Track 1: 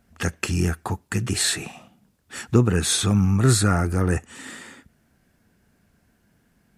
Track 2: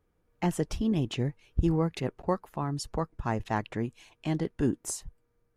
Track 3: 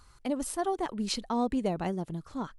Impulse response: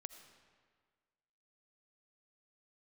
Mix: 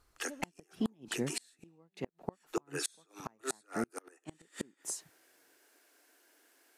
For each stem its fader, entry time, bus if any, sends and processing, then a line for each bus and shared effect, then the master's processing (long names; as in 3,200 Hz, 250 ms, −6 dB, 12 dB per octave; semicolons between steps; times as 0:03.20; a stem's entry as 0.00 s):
0:03.85 −14.5 dB → 0:04.11 −3.5 dB, 0.00 s, send −8.5 dB, Butterworth high-pass 290 Hz 72 dB per octave; high-shelf EQ 2,400 Hz +8 dB
+1.5 dB, 0.00 s, no send, high-pass filter 170 Hz 24 dB per octave; expander for the loud parts 1.5 to 1, over −36 dBFS
−13.5 dB, 0.00 s, no send, automatic ducking −13 dB, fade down 1.20 s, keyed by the first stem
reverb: on, RT60 1.7 s, pre-delay 40 ms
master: gate with flip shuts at −22 dBFS, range −35 dB